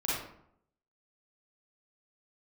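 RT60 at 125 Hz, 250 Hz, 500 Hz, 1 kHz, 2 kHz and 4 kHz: 0.80, 0.80, 0.70, 0.70, 0.55, 0.40 seconds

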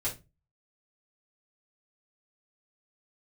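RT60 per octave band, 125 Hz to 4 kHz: 0.45, 0.35, 0.30, 0.20, 0.20, 0.20 seconds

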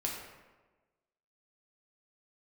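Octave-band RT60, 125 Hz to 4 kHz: 1.2, 1.3, 1.4, 1.2, 1.0, 0.75 seconds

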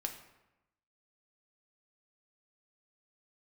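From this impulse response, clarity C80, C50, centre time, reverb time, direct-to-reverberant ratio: 11.0 dB, 8.5 dB, 19 ms, 0.95 s, 3.5 dB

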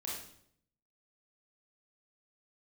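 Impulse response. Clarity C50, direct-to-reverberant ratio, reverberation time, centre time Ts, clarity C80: 1.0 dB, −5.0 dB, 0.65 s, 54 ms, 5.5 dB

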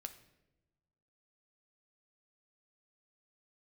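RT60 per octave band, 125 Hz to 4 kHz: 1.7, 1.5, 1.2, 0.80, 0.80, 0.65 seconds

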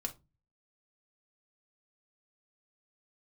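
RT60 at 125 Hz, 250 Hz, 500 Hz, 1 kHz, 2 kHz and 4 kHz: 0.65, 0.40, 0.25, 0.20, 0.20, 0.20 seconds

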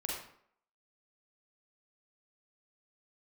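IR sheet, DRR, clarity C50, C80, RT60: −3.5 dB, 0.5 dB, 5.0 dB, 0.65 s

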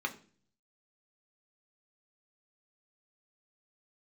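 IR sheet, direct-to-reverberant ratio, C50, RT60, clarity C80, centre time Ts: 3.0 dB, 15.0 dB, 0.45 s, 19.0 dB, 8 ms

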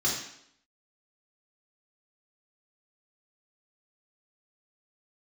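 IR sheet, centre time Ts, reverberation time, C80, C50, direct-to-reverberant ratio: 43 ms, 0.70 s, 6.5 dB, 3.5 dB, −5.0 dB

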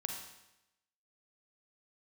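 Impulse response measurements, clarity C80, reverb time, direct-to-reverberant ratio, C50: 6.0 dB, 0.90 s, 2.0 dB, 3.5 dB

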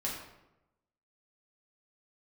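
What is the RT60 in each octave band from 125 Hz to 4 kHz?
1.1, 1.0, 0.95, 0.85, 0.75, 0.60 seconds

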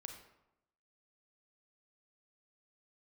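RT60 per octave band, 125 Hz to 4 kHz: 0.95, 0.95, 0.90, 0.85, 0.70, 0.55 seconds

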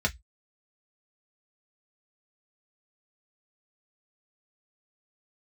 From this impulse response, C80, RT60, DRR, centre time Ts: 38.0 dB, 0.10 s, 0.5 dB, 6 ms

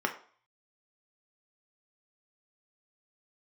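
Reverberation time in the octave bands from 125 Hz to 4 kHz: 0.50, 0.40, 0.45, 0.50, 0.45, 0.45 seconds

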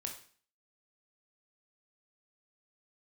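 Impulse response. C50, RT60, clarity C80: 8.0 dB, 0.45 s, 12.0 dB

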